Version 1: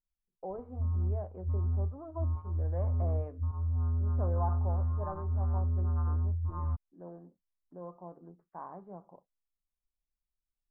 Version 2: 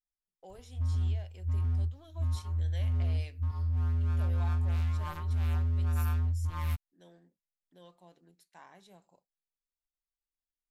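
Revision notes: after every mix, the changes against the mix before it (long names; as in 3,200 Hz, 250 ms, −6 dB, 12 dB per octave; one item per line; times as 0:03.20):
speech −11.5 dB
master: remove elliptic low-pass filter 1,200 Hz, stop band 80 dB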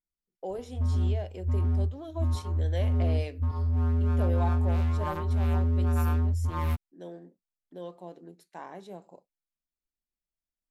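speech +3.0 dB
master: add parametric band 390 Hz +14.5 dB 2.8 octaves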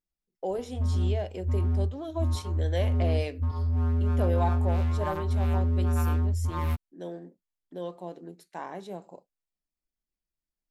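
speech +4.5 dB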